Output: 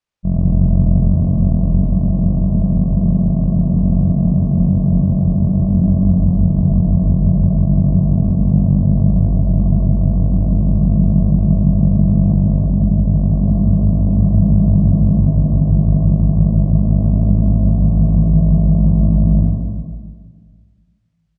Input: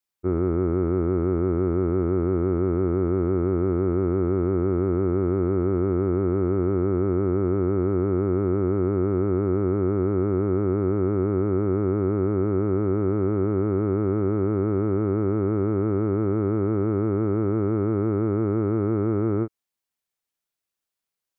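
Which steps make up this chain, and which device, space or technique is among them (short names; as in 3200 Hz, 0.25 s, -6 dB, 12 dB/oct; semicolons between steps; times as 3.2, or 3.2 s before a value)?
12.66–13.14 air absorption 390 m; monster voice (pitch shift -12 st; low shelf 150 Hz +7 dB; reverb RT60 1.7 s, pre-delay 57 ms, DRR 0 dB); air absorption 95 m; gain +3 dB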